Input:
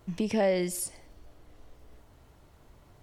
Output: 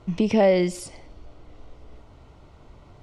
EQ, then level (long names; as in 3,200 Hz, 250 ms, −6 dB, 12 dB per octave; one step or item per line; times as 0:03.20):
high-frequency loss of the air 100 metres
notch filter 1,700 Hz, Q 5.6
+8.0 dB